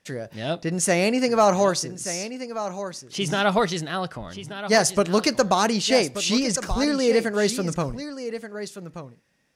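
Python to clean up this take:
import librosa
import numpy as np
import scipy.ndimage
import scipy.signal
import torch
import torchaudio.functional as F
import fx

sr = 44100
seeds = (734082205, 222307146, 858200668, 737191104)

y = fx.fix_declip(x, sr, threshold_db=-9.0)
y = fx.fix_echo_inverse(y, sr, delay_ms=1180, level_db=-11.5)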